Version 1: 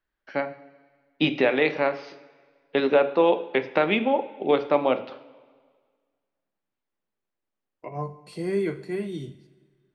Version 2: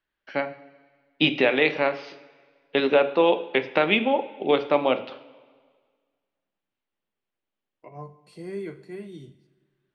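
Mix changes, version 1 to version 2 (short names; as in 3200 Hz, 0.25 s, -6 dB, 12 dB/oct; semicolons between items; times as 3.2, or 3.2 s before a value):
first voice: add bell 3000 Hz +6 dB 0.86 oct; second voice -8.0 dB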